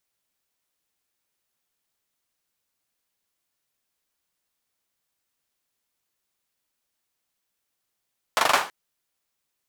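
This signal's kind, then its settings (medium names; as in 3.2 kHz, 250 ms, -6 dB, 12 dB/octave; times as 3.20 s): hand clap length 0.33 s, bursts 5, apart 41 ms, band 990 Hz, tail 0.34 s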